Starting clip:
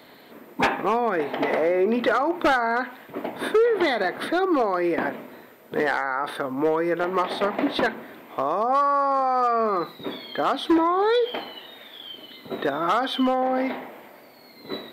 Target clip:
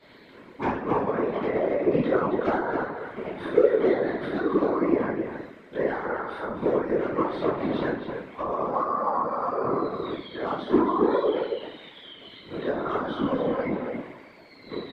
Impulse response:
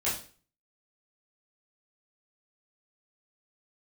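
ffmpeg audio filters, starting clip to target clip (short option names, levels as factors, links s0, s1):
-filter_complex "[0:a]lowpass=5600,equalizer=f=720:t=o:w=0.33:g=-12[s0];[1:a]atrim=start_sample=2205[s1];[s0][s1]afir=irnorm=-1:irlink=0,acrossover=split=1200[s2][s3];[s3]acompressor=threshold=0.0178:ratio=6[s4];[s2][s4]amix=inputs=2:normalize=0,asplit=2[s5][s6];[s6]adelay=268.2,volume=0.501,highshelf=f=4000:g=-6.04[s7];[s5][s7]amix=inputs=2:normalize=0,afftfilt=real='hypot(re,im)*cos(2*PI*random(0))':imag='hypot(re,im)*sin(2*PI*random(1))':win_size=512:overlap=0.75,volume=0.75"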